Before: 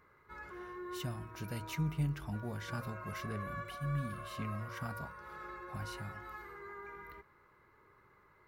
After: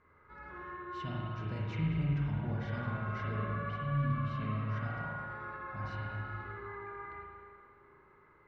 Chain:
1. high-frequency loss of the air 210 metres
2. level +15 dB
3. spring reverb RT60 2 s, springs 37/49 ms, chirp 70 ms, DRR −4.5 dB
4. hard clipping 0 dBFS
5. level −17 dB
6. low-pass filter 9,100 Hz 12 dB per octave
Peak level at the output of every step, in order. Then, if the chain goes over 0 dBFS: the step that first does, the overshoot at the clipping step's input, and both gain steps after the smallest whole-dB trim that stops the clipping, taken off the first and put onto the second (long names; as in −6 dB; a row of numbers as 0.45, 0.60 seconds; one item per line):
−24.0, −9.0, −5.0, −5.0, −22.0, −22.0 dBFS
no step passes full scale